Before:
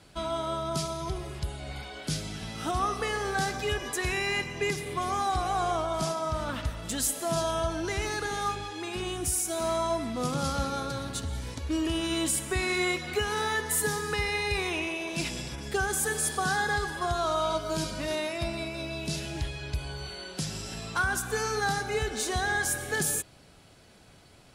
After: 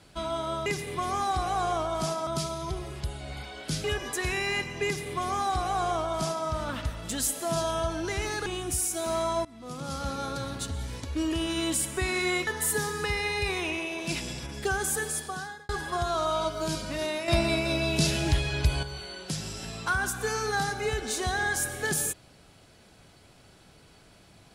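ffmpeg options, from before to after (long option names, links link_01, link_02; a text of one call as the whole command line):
ffmpeg -i in.wav -filter_complex "[0:a]asplit=10[link_01][link_02][link_03][link_04][link_05][link_06][link_07][link_08][link_09][link_10];[link_01]atrim=end=0.662[link_11];[link_02]atrim=start=4.648:end=6.262[link_12];[link_03]atrim=start=0.658:end=2.232[link_13];[link_04]atrim=start=3.638:end=8.262[link_14];[link_05]atrim=start=8.998:end=9.99,asetpts=PTS-STARTPTS,afade=type=out:start_time=0.988:duration=0.004:curve=hsin:silence=0.0841395[link_15];[link_06]atrim=start=9.99:end=13.012,asetpts=PTS-STARTPTS,afade=type=in:duration=0.9:silence=0.0841395[link_16];[link_07]atrim=start=13.558:end=16.78,asetpts=PTS-STARTPTS,afade=type=out:start_time=2.432:duration=0.79[link_17];[link_08]atrim=start=16.78:end=18.372,asetpts=PTS-STARTPTS,afade=type=in:duration=0.004:curve=hsin[link_18];[link_09]atrim=start=18.368:end=19.922,asetpts=PTS-STARTPTS,volume=8dB[link_19];[link_10]atrim=start=19.918[link_20];[link_11][link_12]acrossfade=duration=0.004:curve1=hsin:curve2=hsin[link_21];[link_21][link_13]acrossfade=duration=0.004:curve1=hsin:curve2=hsin[link_22];[link_22][link_14]acrossfade=duration=0.004:curve1=hsin:curve2=hsin[link_23];[link_15][link_16]concat=n=2:v=0:a=1[link_24];[link_23][link_24]acrossfade=duration=0.004:curve1=hsin:curve2=hsin[link_25];[link_17][link_18]concat=n=2:v=0:a=1[link_26];[link_25][link_26]acrossfade=duration=0.004:curve1=hsin:curve2=hsin[link_27];[link_27][link_19]acrossfade=duration=0.004:curve1=hsin:curve2=hsin[link_28];[link_28][link_20]acrossfade=duration=0.004:curve1=hsin:curve2=hsin" out.wav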